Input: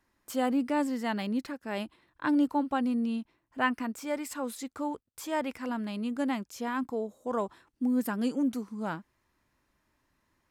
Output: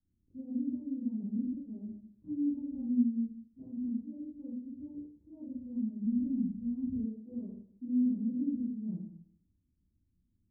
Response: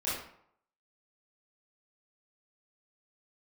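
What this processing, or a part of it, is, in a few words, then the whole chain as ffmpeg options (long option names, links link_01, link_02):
club heard from the street: -filter_complex "[0:a]alimiter=limit=-22.5dB:level=0:latency=1,lowpass=frequency=230:width=0.5412,lowpass=frequency=230:width=1.3066[link_01];[1:a]atrim=start_sample=2205[link_02];[link_01][link_02]afir=irnorm=-1:irlink=0,asplit=3[link_03][link_04][link_05];[link_03]afade=type=out:start_time=6.04:duration=0.02[link_06];[link_04]asubboost=boost=6:cutoff=160,afade=type=in:start_time=6.04:duration=0.02,afade=type=out:start_time=7.05:duration=0.02[link_07];[link_05]afade=type=in:start_time=7.05:duration=0.02[link_08];[link_06][link_07][link_08]amix=inputs=3:normalize=0,volume=-3dB"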